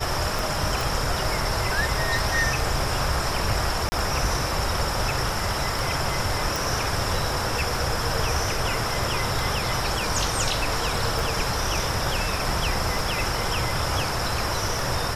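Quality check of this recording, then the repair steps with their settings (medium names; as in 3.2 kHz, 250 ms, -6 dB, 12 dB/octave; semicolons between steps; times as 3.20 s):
tick 33 1/3 rpm
0.81 s: pop
3.89–3.92 s: dropout 30 ms
6.56 s: pop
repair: de-click; interpolate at 3.89 s, 30 ms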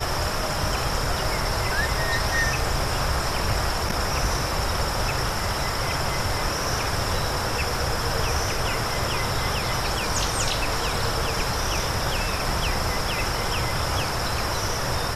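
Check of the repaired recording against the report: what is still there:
nothing left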